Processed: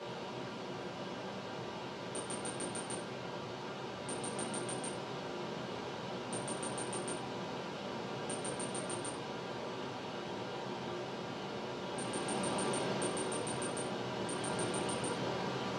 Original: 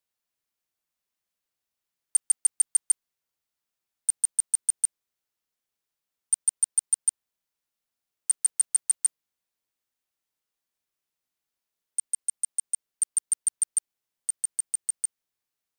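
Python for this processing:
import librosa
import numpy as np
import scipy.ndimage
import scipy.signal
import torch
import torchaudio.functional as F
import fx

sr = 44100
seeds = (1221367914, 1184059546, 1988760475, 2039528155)

y = x + 0.5 * 10.0 ** (-39.0 / 20.0) * np.sign(x)
y = scipy.signal.sosfilt(scipy.signal.butter(4, 110.0, 'highpass', fs=sr, output='sos'), y)
y = fx.peak_eq(y, sr, hz=1900.0, db=-7.0, octaves=0.9)
y = fx.rider(y, sr, range_db=10, speed_s=0.5)
y = fx.spacing_loss(y, sr, db_at_10k=41)
y = fx.room_shoebox(y, sr, seeds[0], volume_m3=40.0, walls='mixed', distance_m=1.2)
y = y * librosa.db_to_amplitude(13.5)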